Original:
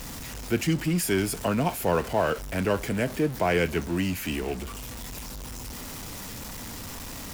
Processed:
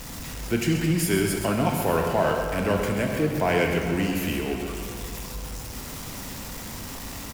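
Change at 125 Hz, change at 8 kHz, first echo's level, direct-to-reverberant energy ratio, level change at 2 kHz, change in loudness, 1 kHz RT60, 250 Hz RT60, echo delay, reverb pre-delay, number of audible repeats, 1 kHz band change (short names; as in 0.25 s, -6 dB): +2.5 dB, +1.5 dB, -9.0 dB, 1.5 dB, +2.5 dB, +2.5 dB, 2.7 s, 2.6 s, 0.13 s, 17 ms, 1, +2.5 dB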